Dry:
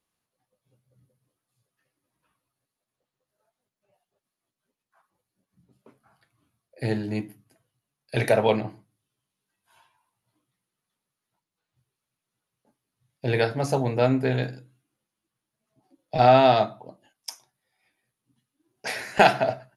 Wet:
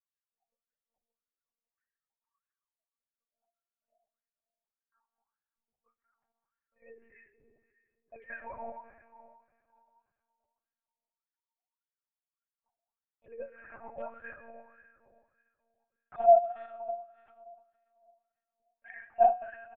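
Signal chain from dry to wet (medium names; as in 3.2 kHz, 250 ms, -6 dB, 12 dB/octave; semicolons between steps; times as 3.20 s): formants replaced by sine waves; hum notches 50/100/150/200/250/300/350/400/450 Hz; doubling 46 ms -13 dB; reverberation RT60 2.4 s, pre-delay 75 ms, DRR 7 dB; wah-wah 1.7 Hz 700–1700 Hz, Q 7.1; monotone LPC vocoder at 8 kHz 230 Hz; trim -3.5 dB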